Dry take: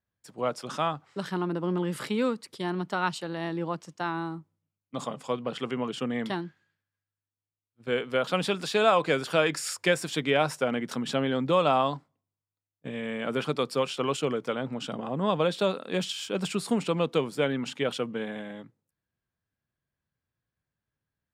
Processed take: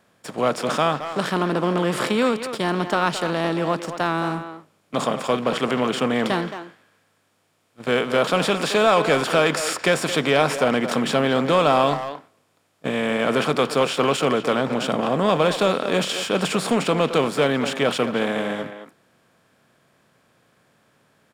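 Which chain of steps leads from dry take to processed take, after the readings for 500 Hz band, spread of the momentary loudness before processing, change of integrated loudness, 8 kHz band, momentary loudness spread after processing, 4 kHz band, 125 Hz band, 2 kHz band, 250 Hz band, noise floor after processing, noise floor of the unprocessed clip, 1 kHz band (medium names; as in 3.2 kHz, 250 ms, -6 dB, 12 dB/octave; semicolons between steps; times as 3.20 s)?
+7.5 dB, 11 LU, +7.5 dB, +8.0 dB, 7 LU, +8.0 dB, +6.5 dB, +8.5 dB, +7.0 dB, -65 dBFS, under -85 dBFS, +8.0 dB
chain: spectral levelling over time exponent 0.6; waveshaping leveller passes 1; speakerphone echo 220 ms, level -9 dB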